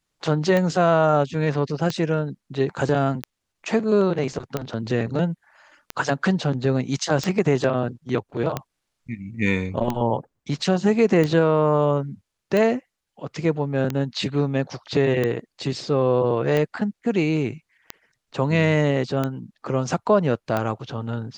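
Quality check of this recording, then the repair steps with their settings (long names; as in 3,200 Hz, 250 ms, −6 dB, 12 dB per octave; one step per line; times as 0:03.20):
scratch tick 45 rpm −11 dBFS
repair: click removal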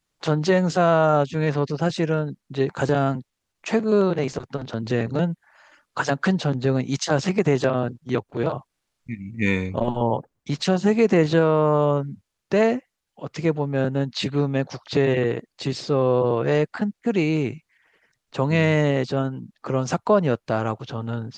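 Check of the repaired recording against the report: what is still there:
none of them is left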